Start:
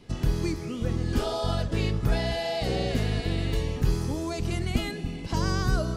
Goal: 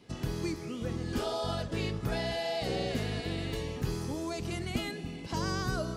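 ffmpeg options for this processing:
ffmpeg -i in.wav -af "highpass=frequency=150:poles=1,volume=-3.5dB" out.wav

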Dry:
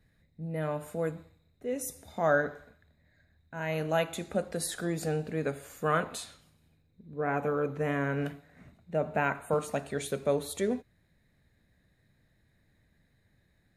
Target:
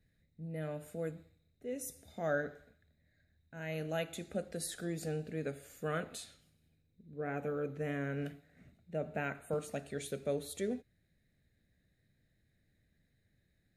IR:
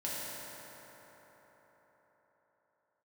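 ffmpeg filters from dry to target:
-af "equalizer=frequency=1000:width_type=o:width=0.57:gain=-14,volume=-6dB"

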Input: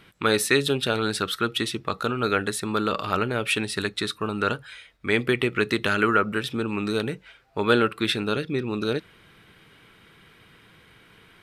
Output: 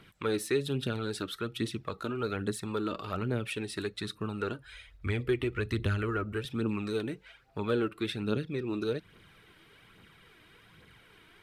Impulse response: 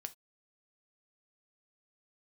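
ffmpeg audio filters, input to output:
-filter_complex "[0:a]asettb=1/sr,asplit=3[link_01][link_02][link_03];[link_01]atrim=end=4.644[link_04];[link_02]atrim=start=4.64:end=6.45,asetpts=PTS-STARTPTS,afade=type=in:duration=0.004:curve=qsin,afade=type=out:start_time=1.806:duration=0.004:curve=qsin,lowshelf=frequency=110:width_type=q:width=1.5:gain=12.5[link_05];[link_03]atrim=start=6.446[link_06];[link_04][link_05]acrossfade=duration=0.004:curve1=hsin:curve2=qsin[link_07];[link_07][link_06]acrossfade=duration=0.004:curve1=qsin:curve2=hsin,acrossover=split=420[link_08][link_09];[link_09]acompressor=threshold=-38dB:ratio=2[link_10];[link_08][link_10]amix=inputs=2:normalize=0,aphaser=in_gain=1:out_gain=1:delay=3.4:decay=0.46:speed=1.2:type=triangular,volume=-5.5dB"

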